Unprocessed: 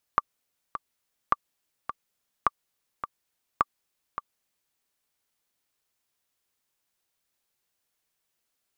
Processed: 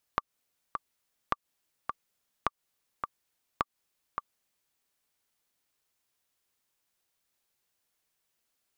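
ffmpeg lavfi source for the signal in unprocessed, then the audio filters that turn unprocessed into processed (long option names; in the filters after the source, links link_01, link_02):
-f lavfi -i "aevalsrc='pow(10,(-7-11*gte(mod(t,2*60/105),60/105))/20)*sin(2*PI*1170*mod(t,60/105))*exp(-6.91*mod(t,60/105)/0.03)':duration=4.57:sample_rate=44100"
-af "acompressor=threshold=-27dB:ratio=5"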